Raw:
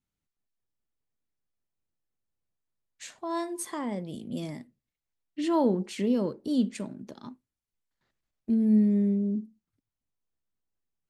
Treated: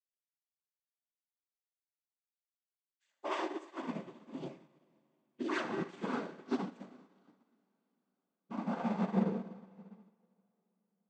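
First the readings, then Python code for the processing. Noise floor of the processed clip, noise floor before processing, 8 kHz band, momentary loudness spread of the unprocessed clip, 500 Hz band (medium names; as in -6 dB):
under -85 dBFS, under -85 dBFS, -18.0 dB, 22 LU, -8.5 dB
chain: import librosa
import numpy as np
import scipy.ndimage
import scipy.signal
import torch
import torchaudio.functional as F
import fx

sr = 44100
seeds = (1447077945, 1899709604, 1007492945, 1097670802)

y = fx.diode_clip(x, sr, knee_db=-22.0)
y = scipy.signal.sosfilt(scipy.signal.butter(2, 160.0, 'highpass', fs=sr, output='sos'), y)
y = fx.bass_treble(y, sr, bass_db=-4, treble_db=-7)
y = fx.hpss(y, sr, part='percussive', gain_db=-15)
y = fx.low_shelf(y, sr, hz=370.0, db=-6.0)
y = 10.0 ** (-32.5 / 20.0) * (np.abs((y / 10.0 ** (-32.5 / 20.0) + 3.0) % 4.0 - 2.0) - 1.0)
y = fx.noise_vocoder(y, sr, seeds[0], bands=16)
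y = y + 10.0 ** (-11.5 / 20.0) * np.pad(y, (int(77 * sr / 1000.0), 0))[:len(y)]
y = fx.rev_plate(y, sr, seeds[1], rt60_s=4.9, hf_ratio=1.0, predelay_ms=0, drr_db=4.5)
y = fx.upward_expand(y, sr, threshold_db=-53.0, expansion=2.5)
y = y * 10.0 ** (8.0 / 20.0)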